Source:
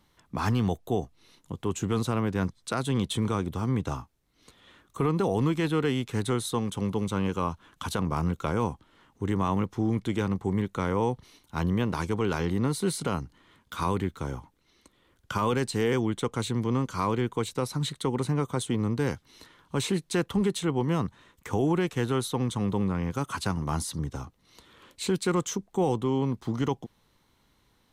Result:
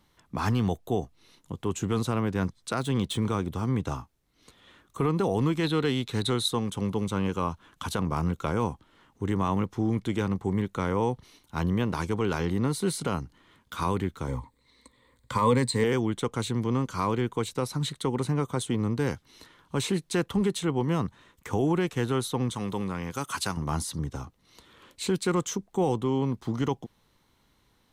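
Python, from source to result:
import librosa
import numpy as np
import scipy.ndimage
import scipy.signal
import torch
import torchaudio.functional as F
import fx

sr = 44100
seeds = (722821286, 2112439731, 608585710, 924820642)

y = fx.median_filter(x, sr, points=3, at=(2.72, 3.47))
y = fx.peak_eq(y, sr, hz=3900.0, db=13.5, octaves=0.27, at=(5.63, 6.48))
y = fx.ripple_eq(y, sr, per_octave=0.99, db=12, at=(14.27, 15.84))
y = fx.tilt_eq(y, sr, slope=2.0, at=(22.54, 23.57))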